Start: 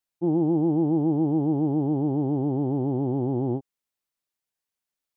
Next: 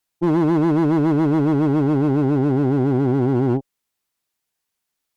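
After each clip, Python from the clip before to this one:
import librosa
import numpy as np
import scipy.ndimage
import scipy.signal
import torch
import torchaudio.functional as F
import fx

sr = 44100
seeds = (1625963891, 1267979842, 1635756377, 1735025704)

y = fx.notch(x, sr, hz=570.0, q=12.0)
y = fx.clip_asym(y, sr, top_db=-27.5, bottom_db=-19.5)
y = y * 10.0 ** (8.5 / 20.0)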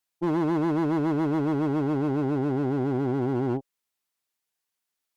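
y = fx.low_shelf(x, sr, hz=310.0, db=-6.0)
y = y * 10.0 ** (-4.5 / 20.0)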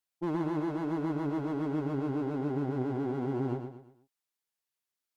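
y = fx.rider(x, sr, range_db=10, speed_s=0.5)
y = fx.echo_feedback(y, sr, ms=117, feedback_pct=37, wet_db=-7)
y = y * 10.0 ** (-7.5 / 20.0)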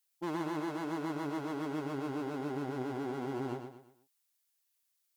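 y = fx.tilt_eq(x, sr, slope=3.0)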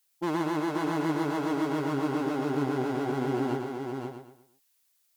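y = x + 10.0 ** (-5.0 / 20.0) * np.pad(x, (int(524 * sr / 1000.0), 0))[:len(x)]
y = y * 10.0 ** (7.0 / 20.0)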